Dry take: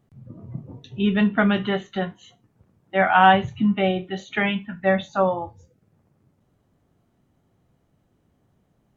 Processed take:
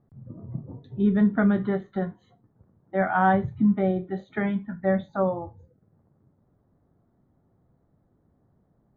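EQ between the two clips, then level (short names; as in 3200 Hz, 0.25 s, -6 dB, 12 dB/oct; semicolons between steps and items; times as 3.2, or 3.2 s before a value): dynamic EQ 870 Hz, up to -6 dB, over -33 dBFS, Q 1.1; running mean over 16 samples; air absorption 87 m; 0.0 dB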